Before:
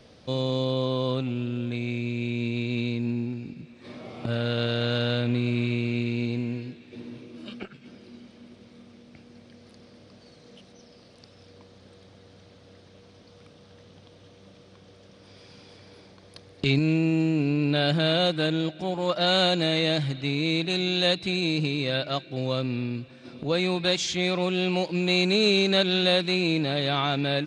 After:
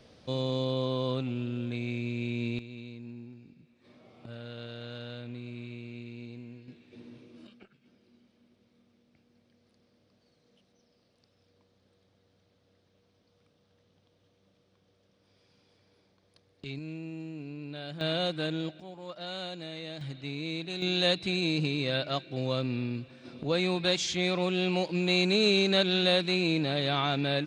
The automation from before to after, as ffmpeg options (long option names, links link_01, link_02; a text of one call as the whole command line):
ffmpeg -i in.wav -af "asetnsamples=nb_out_samples=441:pad=0,asendcmd='2.59 volume volume -16dB;6.68 volume volume -9dB;7.47 volume volume -17dB;18.01 volume volume -7dB;18.8 volume volume -16.5dB;20.01 volume volume -10dB;20.82 volume volume -3dB',volume=-4dB" out.wav